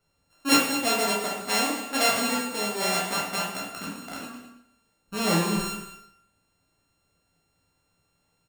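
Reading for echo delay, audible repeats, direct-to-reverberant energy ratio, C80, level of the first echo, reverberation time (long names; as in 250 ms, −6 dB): 209 ms, 1, −4.0 dB, 5.0 dB, −14.0 dB, 0.80 s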